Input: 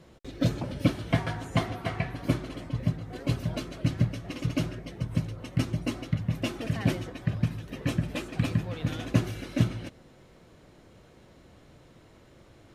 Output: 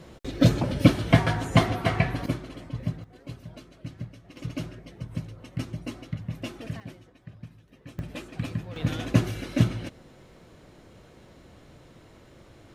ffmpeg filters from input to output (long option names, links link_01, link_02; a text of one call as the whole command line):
ffmpeg -i in.wav -af "asetnsamples=nb_out_samples=441:pad=0,asendcmd='2.26 volume volume -2.5dB;3.04 volume volume -12dB;4.37 volume volume -5dB;6.8 volume volume -16.5dB;7.99 volume volume -4.5dB;8.76 volume volume 3dB',volume=7dB" out.wav